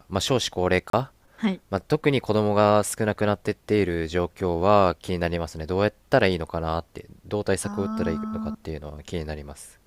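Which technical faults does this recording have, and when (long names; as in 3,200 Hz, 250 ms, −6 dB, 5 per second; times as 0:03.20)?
0:00.90–0:00.93: drop-out 33 ms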